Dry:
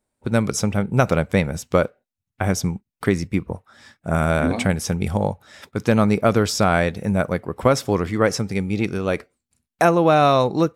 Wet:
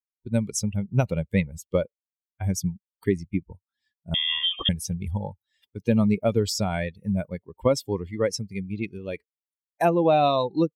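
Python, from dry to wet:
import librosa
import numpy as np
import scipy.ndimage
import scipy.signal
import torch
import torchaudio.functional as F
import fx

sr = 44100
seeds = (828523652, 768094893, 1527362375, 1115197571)

y = fx.bin_expand(x, sr, power=2.0)
y = fx.freq_invert(y, sr, carrier_hz=3400, at=(4.14, 4.69))
y = fx.peak_eq(y, sr, hz=1400.0, db=-11.0, octaves=0.63)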